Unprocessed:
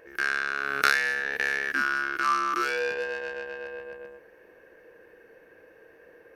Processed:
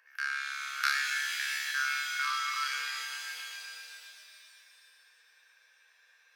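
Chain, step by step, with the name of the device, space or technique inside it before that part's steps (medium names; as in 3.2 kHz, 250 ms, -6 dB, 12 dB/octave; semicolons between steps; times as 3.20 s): 1.00–1.69 s: high-pass 670 Hz; headphones lying on a table (high-pass 1.1 kHz 24 dB/octave; peaking EQ 4.9 kHz +6 dB 0.45 oct); pitch-shifted reverb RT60 2.6 s, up +7 st, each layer -2 dB, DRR 3 dB; trim -7.5 dB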